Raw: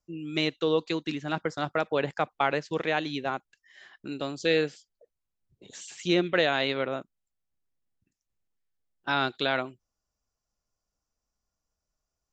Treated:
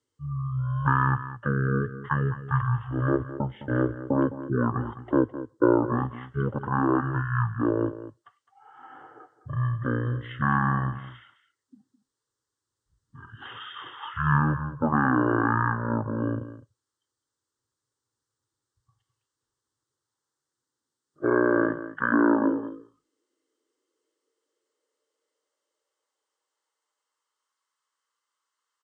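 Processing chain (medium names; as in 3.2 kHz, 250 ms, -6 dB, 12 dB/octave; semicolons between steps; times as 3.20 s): peaking EQ 170 Hz -7 dB 0.76 oct; in parallel at +1 dB: compression, threshold -32 dBFS, peak gain reduction 12.5 dB; on the sum: static phaser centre 1.6 kHz, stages 6; on a send: delay 90 ms -13.5 dB; on the sum: high-pass sweep 270 Hz -> 2.5 kHz, 8.44–11.84 s; speed mistake 78 rpm record played at 33 rpm; trim +3.5 dB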